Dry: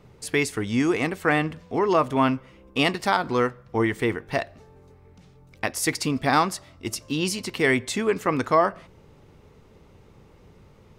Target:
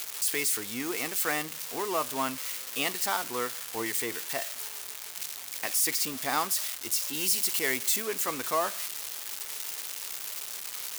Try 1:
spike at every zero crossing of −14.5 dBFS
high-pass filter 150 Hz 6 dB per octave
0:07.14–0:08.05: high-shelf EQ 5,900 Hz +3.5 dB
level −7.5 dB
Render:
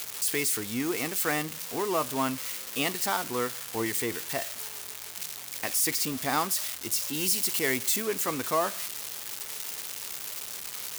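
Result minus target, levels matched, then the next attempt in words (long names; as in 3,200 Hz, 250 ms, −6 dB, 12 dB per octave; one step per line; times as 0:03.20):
125 Hz band +7.5 dB
spike at every zero crossing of −14.5 dBFS
high-pass filter 510 Hz 6 dB per octave
0:07.14–0:08.05: high-shelf EQ 5,900 Hz +3.5 dB
level −7.5 dB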